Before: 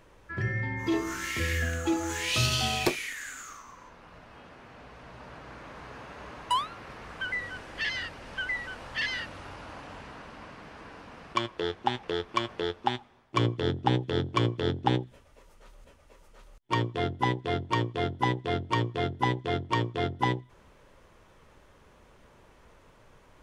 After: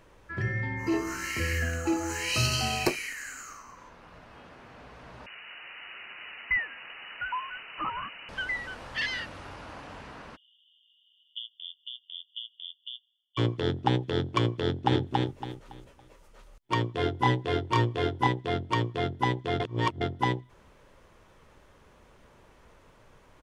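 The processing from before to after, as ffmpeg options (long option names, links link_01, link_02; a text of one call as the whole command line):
ffmpeg -i in.wav -filter_complex "[0:a]asettb=1/sr,asplit=3[link_01][link_02][link_03];[link_01]atrim=end=0.784[link_04];[link_02]atrim=start=0.78:end=3.77,asetpts=PTS-STARTPTS,afade=type=in:duration=0.004:curve=qsin,afade=type=out:start_time=2.986:duration=0.004:curve=qsin,asuperstop=centerf=3500:order=20:qfactor=5.2[link_05];[link_03]atrim=start=3.766[link_06];[link_04][link_05]acrossfade=duration=0.004:curve1=hsin:curve2=qsin[link_07];[link_07][link_06]acrossfade=duration=0.004:curve1=qsin:curve2=hsin,asettb=1/sr,asplit=3[link_08][link_09][link_10];[link_08]atrim=end=5.264[link_11];[link_09]atrim=start=5.26:end=8.29,asetpts=PTS-STARTPTS,afade=type=in:duration=0.004:curve=qsin,afade=type=out:start_time=3.026:duration=0.004:curve=qsin,lowpass=frequency=2600:width_type=q:width=0.5098,lowpass=frequency=2600:width_type=q:width=0.6013,lowpass=frequency=2600:width_type=q:width=0.9,lowpass=frequency=2600:width_type=q:width=2.563,afreqshift=-3000[link_12];[link_10]atrim=start=8.286[link_13];[link_11][link_12]acrossfade=duration=0.004:curve1=hsin:curve2=qsin[link_14];[link_14][link_13]acrossfade=duration=0.004:curve1=qsin:curve2=hsin,asplit=3[link_15][link_16][link_17];[link_15]afade=type=out:start_time=10.35:duration=0.02[link_18];[link_16]asuperpass=centerf=3200:order=20:qfactor=4.2,afade=type=in:start_time=10.35:duration=0.02,afade=type=out:start_time=13.37:duration=0.02[link_19];[link_17]afade=type=in:start_time=13.37:duration=0.02[link_20];[link_18][link_19][link_20]amix=inputs=3:normalize=0,asplit=2[link_21][link_22];[link_22]afade=type=in:start_time=14.63:duration=0.01,afade=type=out:start_time=15.03:duration=0.01,aecho=0:1:280|560|840|1120:0.794328|0.238298|0.0714895|0.0214469[link_23];[link_21][link_23]amix=inputs=2:normalize=0,asettb=1/sr,asplit=3[link_24][link_25][link_26];[link_24]atrim=end=16.964[link_27];[link_25]atrim=start=16.96:end=18.27,asetpts=PTS-STARTPTS,afade=type=in:duration=0.004:curve=qsin,afade=type=out:start_time=1.306:duration=0.004:curve=qsin,asplit=2[link_28][link_29];[link_29]adelay=25,volume=-2dB[link_30];[link_28][link_30]amix=inputs=2:normalize=0,atrim=end_sample=57771[link_31];[link_26]atrim=start=18.266[link_32];[link_27][link_31]acrossfade=duration=0.004:curve1=hsin:curve2=qsin[link_33];[link_33][link_32]acrossfade=duration=0.004:curve1=qsin:curve2=hsin,asplit=3[link_34][link_35][link_36];[link_34]atrim=end=19.602[link_37];[link_35]atrim=start=19.598:end=20.012,asetpts=PTS-STARTPTS,areverse[link_38];[link_36]atrim=start=20.008[link_39];[link_37][link_38]acrossfade=duration=0.004:curve1=hsin:curve2=hsin[link_40];[link_40][link_39]acrossfade=duration=0.004:curve1=hsin:curve2=hsin" out.wav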